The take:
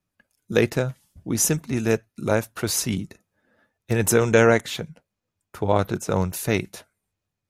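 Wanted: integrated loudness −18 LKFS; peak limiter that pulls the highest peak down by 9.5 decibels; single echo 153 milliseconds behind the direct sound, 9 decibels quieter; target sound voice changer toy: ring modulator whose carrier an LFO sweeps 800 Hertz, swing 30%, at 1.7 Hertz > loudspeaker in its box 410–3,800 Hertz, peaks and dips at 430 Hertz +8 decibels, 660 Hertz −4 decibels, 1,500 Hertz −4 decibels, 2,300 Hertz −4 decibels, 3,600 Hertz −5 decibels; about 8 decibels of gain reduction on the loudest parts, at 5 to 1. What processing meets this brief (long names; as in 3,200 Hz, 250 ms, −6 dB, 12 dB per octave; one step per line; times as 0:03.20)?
downward compressor 5 to 1, threshold −20 dBFS
brickwall limiter −18 dBFS
single-tap delay 153 ms −9 dB
ring modulator whose carrier an LFO sweeps 800 Hz, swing 30%, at 1.7 Hz
loudspeaker in its box 410–3,800 Hz, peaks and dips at 430 Hz +8 dB, 660 Hz −4 dB, 1,500 Hz −4 dB, 2,300 Hz −4 dB, 3,600 Hz −5 dB
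level +17 dB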